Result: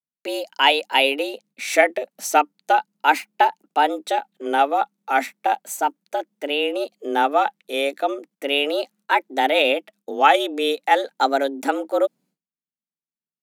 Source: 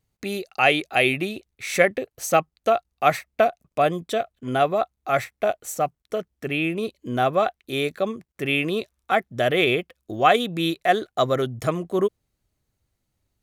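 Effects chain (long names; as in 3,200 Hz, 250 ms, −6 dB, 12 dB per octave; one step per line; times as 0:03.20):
pitch vibrato 0.36 Hz 95 cents
frequency shifter +140 Hz
downward expander −49 dBFS
level +2 dB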